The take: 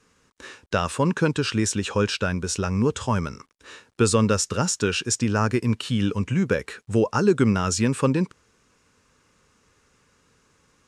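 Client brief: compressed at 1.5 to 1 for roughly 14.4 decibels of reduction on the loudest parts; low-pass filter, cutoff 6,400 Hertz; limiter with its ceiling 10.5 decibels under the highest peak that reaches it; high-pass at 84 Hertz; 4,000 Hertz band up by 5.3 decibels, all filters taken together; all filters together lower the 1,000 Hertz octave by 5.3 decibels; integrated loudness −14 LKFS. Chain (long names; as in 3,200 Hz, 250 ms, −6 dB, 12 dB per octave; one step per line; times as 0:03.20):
high-pass filter 84 Hz
low-pass filter 6,400 Hz
parametric band 1,000 Hz −8 dB
parametric band 4,000 Hz +9 dB
downward compressor 1.5 to 1, threshold −57 dBFS
level +27 dB
brickwall limiter −3.5 dBFS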